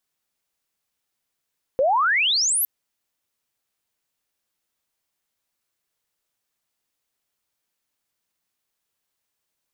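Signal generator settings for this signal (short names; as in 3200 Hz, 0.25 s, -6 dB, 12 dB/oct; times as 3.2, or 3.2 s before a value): chirp logarithmic 500 Hz -> 13000 Hz -15.5 dBFS -> -18.5 dBFS 0.86 s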